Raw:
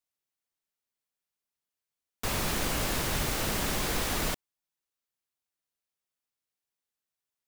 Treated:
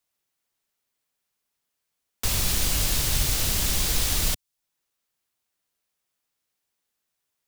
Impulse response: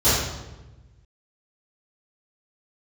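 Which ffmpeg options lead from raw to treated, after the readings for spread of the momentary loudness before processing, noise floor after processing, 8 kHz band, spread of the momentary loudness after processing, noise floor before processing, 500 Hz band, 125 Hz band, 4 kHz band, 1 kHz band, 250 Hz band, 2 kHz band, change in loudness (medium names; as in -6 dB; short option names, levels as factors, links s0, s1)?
4 LU, -81 dBFS, +9.0 dB, 4 LU, under -85 dBFS, -3.5 dB, +6.0 dB, +7.0 dB, -3.0 dB, -1.5 dB, +0.5 dB, +6.5 dB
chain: -filter_complex "[0:a]acrossover=split=120|3000[s0][s1][s2];[s1]acompressor=threshold=0.00178:ratio=2[s3];[s0][s3][s2]amix=inputs=3:normalize=0,volume=2.82"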